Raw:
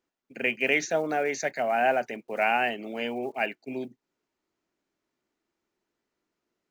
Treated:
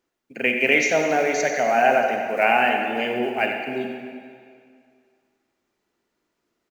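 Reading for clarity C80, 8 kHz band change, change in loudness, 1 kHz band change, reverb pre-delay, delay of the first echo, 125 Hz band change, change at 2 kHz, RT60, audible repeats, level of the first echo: 4.0 dB, can't be measured, +7.0 dB, +7.0 dB, 30 ms, 93 ms, +6.0 dB, +7.0 dB, 2.1 s, 1, −10.5 dB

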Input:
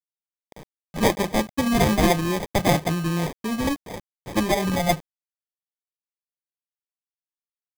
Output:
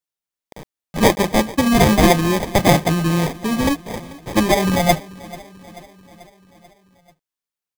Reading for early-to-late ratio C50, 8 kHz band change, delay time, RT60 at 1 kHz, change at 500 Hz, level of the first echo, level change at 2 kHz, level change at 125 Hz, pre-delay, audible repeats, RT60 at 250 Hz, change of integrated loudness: no reverb audible, +6.0 dB, 438 ms, no reverb audible, +6.0 dB, −20.0 dB, +6.0 dB, +6.0 dB, no reverb audible, 4, no reverb audible, +6.0 dB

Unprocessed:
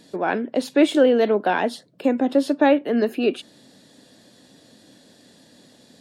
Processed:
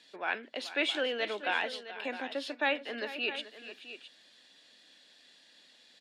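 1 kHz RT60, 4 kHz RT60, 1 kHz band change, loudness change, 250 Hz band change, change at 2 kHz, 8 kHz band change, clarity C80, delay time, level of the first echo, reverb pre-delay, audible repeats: no reverb audible, no reverb audible, −12.0 dB, −13.0 dB, −22.5 dB, −3.5 dB, can't be measured, no reverb audible, 432 ms, −14.5 dB, no reverb audible, 2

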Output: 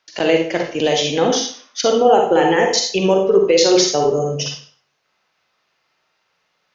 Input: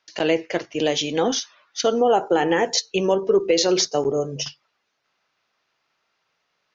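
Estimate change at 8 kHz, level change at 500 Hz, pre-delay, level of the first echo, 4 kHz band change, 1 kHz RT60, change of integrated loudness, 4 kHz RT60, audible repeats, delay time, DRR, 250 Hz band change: can't be measured, +5.5 dB, 35 ms, no echo audible, +5.0 dB, 0.50 s, +5.5 dB, 0.45 s, no echo audible, no echo audible, 2.0 dB, +4.5 dB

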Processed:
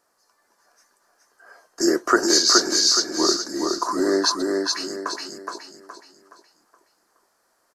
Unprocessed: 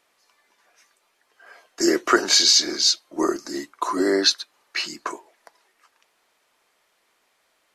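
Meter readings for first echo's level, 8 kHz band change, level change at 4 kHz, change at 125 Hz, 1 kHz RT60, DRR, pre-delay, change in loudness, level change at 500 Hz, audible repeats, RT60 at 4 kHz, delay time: −3.0 dB, +2.0 dB, −0.5 dB, can't be measured, no reverb audible, no reverb audible, no reverb audible, 0.0 dB, +2.0 dB, 4, no reverb audible, 420 ms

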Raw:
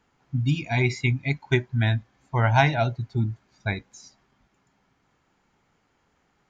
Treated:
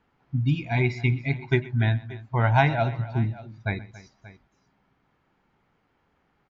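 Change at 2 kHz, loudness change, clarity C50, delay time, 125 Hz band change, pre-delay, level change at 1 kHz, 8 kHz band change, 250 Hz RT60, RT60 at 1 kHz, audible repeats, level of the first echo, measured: −1.5 dB, −0.5 dB, no reverb audible, 124 ms, 0.0 dB, no reverb audible, −0.5 dB, can't be measured, no reverb audible, no reverb audible, 3, −20.0 dB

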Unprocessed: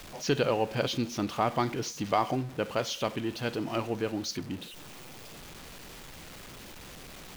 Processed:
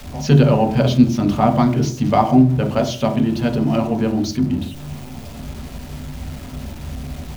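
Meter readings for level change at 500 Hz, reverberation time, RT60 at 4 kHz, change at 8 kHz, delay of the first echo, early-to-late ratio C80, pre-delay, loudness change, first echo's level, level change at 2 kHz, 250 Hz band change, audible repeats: +10.0 dB, 0.40 s, 0.50 s, +5.0 dB, no echo audible, 14.5 dB, 3 ms, +14.0 dB, no echo audible, +5.0 dB, +18.0 dB, no echo audible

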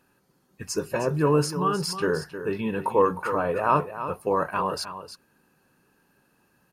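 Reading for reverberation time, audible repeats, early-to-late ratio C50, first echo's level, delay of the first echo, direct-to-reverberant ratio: no reverb audible, 1, no reverb audible, −11.0 dB, 311 ms, no reverb audible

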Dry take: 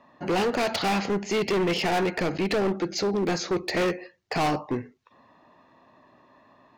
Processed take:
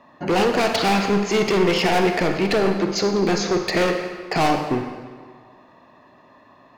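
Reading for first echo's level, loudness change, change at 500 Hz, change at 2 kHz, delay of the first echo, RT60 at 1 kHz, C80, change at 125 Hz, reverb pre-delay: no echo audible, +6.0 dB, +6.0 dB, +6.0 dB, no echo audible, 1.7 s, 7.0 dB, +5.5 dB, 35 ms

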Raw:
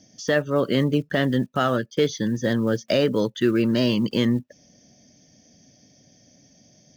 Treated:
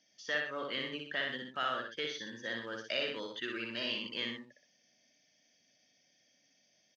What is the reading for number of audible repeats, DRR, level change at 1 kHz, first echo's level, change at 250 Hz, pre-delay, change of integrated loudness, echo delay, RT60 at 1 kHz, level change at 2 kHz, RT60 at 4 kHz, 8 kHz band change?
2, no reverb audible, −10.5 dB, −3.5 dB, −24.0 dB, no reverb audible, −14.5 dB, 60 ms, no reverb audible, −6.0 dB, no reverb audible, can't be measured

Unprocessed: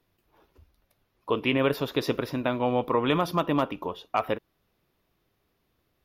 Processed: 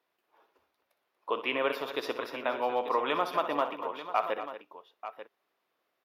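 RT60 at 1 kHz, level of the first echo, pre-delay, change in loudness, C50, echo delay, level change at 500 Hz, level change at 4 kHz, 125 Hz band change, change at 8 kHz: no reverb audible, −11.5 dB, no reverb audible, −4.5 dB, no reverb audible, 62 ms, −4.0 dB, −4.0 dB, −23.5 dB, can't be measured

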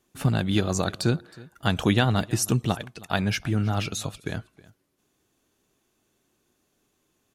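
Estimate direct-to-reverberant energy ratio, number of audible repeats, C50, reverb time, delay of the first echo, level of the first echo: no reverb audible, 1, no reverb audible, no reverb audible, 318 ms, −22.0 dB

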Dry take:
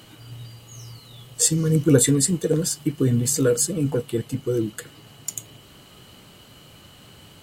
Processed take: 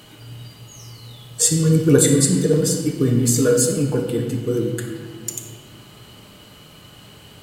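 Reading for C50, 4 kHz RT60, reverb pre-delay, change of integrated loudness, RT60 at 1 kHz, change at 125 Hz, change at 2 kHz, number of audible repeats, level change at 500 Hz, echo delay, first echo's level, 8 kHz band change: 4.5 dB, 1.3 s, 5 ms, +3.0 dB, 1.6 s, +3.5 dB, +4.0 dB, no echo audible, +4.0 dB, no echo audible, no echo audible, +2.5 dB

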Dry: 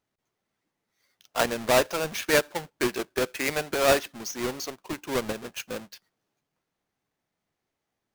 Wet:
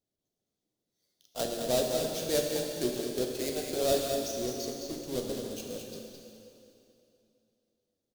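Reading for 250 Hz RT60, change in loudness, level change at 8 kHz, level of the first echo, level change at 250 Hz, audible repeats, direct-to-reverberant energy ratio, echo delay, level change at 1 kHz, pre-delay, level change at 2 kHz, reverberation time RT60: 2.9 s, −5.0 dB, −3.0 dB, −6.5 dB, −2.5 dB, 1, −1.0 dB, 213 ms, −10.5 dB, 6 ms, −16.5 dB, 2.8 s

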